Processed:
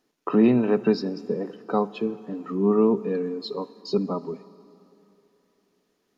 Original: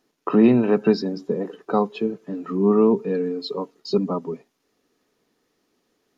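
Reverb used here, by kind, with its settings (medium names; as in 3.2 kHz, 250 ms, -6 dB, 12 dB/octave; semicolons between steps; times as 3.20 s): plate-style reverb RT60 3 s, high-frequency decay 0.9×, DRR 17 dB; trim -3 dB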